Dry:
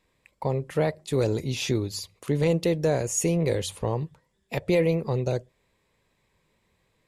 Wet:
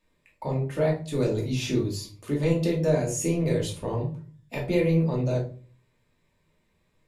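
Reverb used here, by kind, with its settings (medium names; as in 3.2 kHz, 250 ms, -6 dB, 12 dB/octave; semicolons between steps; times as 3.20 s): simulated room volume 280 m³, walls furnished, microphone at 2.6 m; trim -6.5 dB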